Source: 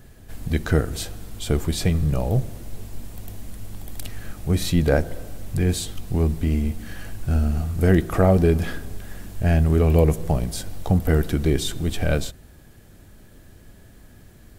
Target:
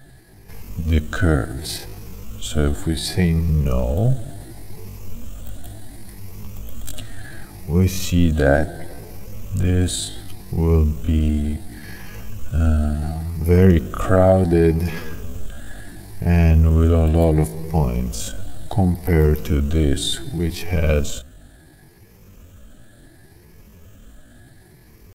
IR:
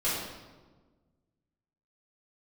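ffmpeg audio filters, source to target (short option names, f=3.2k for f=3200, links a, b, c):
-af "afftfilt=real='re*pow(10,9/40*sin(2*PI*(0.81*log(max(b,1)*sr/1024/100)/log(2)-(1.2)*(pts-256)/sr)))':imag='im*pow(10,9/40*sin(2*PI*(0.81*log(max(b,1)*sr/1024/100)/log(2)-(1.2)*(pts-256)/sr)))':win_size=1024:overlap=0.75,atempo=0.58,volume=1.5dB"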